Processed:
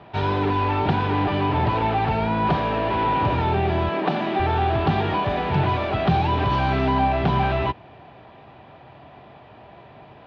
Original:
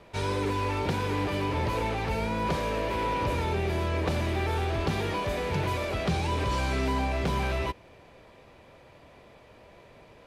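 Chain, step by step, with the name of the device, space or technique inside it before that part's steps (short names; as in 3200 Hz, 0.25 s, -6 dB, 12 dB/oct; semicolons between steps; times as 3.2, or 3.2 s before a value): guitar cabinet (speaker cabinet 80–3500 Hz, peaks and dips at 130 Hz +5 dB, 510 Hz -9 dB, 750 Hz +8 dB, 2200 Hz -6 dB); 3.89–4.4 steep high-pass 160 Hz 48 dB/oct; gain +7.5 dB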